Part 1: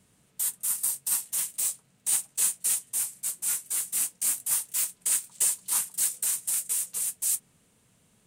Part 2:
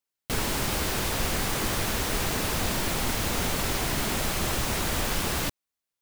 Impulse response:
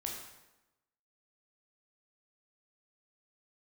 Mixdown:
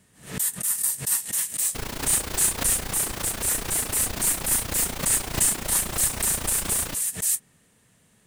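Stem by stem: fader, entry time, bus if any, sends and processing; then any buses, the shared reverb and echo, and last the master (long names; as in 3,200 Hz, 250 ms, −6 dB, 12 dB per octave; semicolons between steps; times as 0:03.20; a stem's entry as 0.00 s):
+3.0 dB, 0.00 s, no send, parametric band 1,800 Hz +9 dB 0.21 octaves
−2.0 dB, 1.45 s, no send, amplitude modulation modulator 29 Hz, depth 70%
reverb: not used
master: background raised ahead of every attack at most 130 dB per second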